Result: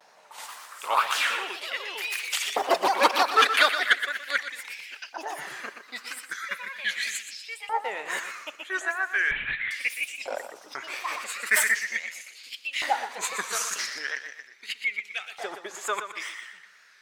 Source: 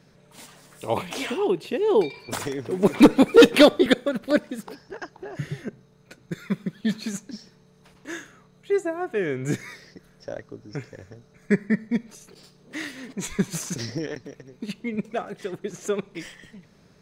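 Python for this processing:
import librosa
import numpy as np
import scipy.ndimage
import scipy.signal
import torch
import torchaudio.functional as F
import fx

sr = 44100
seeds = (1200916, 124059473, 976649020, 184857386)

p1 = fx.rider(x, sr, range_db=3, speed_s=0.5)
p2 = fx.echo_pitch(p1, sr, ms=164, semitones=3, count=2, db_per_echo=-6.0)
p3 = fx.wow_flutter(p2, sr, seeds[0], rate_hz=2.1, depth_cents=110.0)
p4 = p3 + fx.echo_feedback(p3, sr, ms=121, feedback_pct=33, wet_db=-9.5, dry=0)
p5 = fx.filter_lfo_highpass(p4, sr, shape='saw_up', hz=0.39, low_hz=790.0, high_hz=2800.0, q=2.9)
p6 = fx.lpc_vocoder(p5, sr, seeds[1], excitation='whisper', order=8, at=(9.31, 9.71))
y = fx.sustainer(p6, sr, db_per_s=45.0, at=(10.99, 11.71))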